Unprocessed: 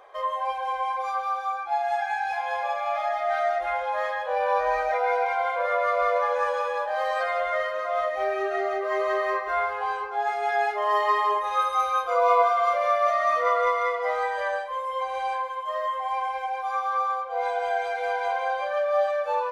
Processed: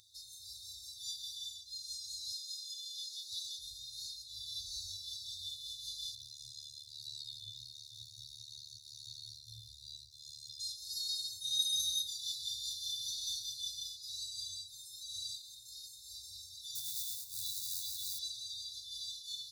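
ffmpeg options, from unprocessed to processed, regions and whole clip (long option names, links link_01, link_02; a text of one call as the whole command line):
ffmpeg -i in.wav -filter_complex "[0:a]asettb=1/sr,asplit=3[link_01][link_02][link_03];[link_01]atrim=end=2.314[link_04];[link_02]atrim=start=2.31:end=3.59,asetpts=PTS-STARTPTS,afade=type=in:duration=0.004:curve=qsin,afade=type=out:start_time=1.276:duration=0.004:curve=qsin,highpass=440,asoftclip=type=hard:threshold=-16.5dB[link_05];[link_03]atrim=start=3.586[link_06];[link_04][link_05]acrossfade=duration=0.004:curve1=hsin:curve2=qsin[link_07];[link_07][link_06]acrossfade=duration=0.004:curve1=qsin:curve2=hsin,asettb=1/sr,asplit=3[link_08][link_09][link_10];[link_08]atrim=end=6.154[link_11];[link_09]atrim=start=6.15:end=10.6,asetpts=PTS-STARTPTS,afade=type=in:duration=0.004:curve=qsin,afade=type=out:start_time=4.446:duration=0.004:curve=qsin,acrossover=split=4200[link_12][link_13];[link_13]acompressor=threshold=-59dB:ratio=4:attack=1:release=60[link_14];[link_12][link_14]amix=inputs=2:normalize=0,aphaser=in_gain=1:out_gain=1:delay=1.3:decay=0.2:speed=1.5:type=triangular,tremolo=f=73:d=0.974[link_15];[link_10]atrim=start=10.596[link_16];[link_11][link_15]acrossfade=duration=0.004:curve1=hsin:curve2=qsin[link_17];[link_17][link_16]acrossfade=duration=0.004:curve1=qsin:curve2=hsin,asettb=1/sr,asplit=3[link_18][link_19][link_20];[link_18]atrim=end=16.754[link_21];[link_19]atrim=start=16.75:end=18.19,asetpts=PTS-STARTPTS,afade=type=in:duration=0.004:curve=qsin,afade=type=out:start_time=1.436:duration=0.004:curve=qsin,highshelf=frequency=4700:gain=-6,acrusher=bits=6:mode=log:mix=0:aa=0.000001[link_22];[link_20]atrim=start=18.186[link_23];[link_21][link_22]acrossfade=duration=0.004:curve1=hsin:curve2=qsin[link_24];[link_24][link_23]acrossfade=duration=0.004:curve1=qsin:curve2=hsin,afftfilt=real='re*(1-between(b*sr/4096,120,3500))':imag='im*(1-between(b*sr/4096,120,3500))':win_size=4096:overlap=0.75,highpass=frequency=86:width=0.5412,highpass=frequency=86:width=1.3066,volume=11.5dB" out.wav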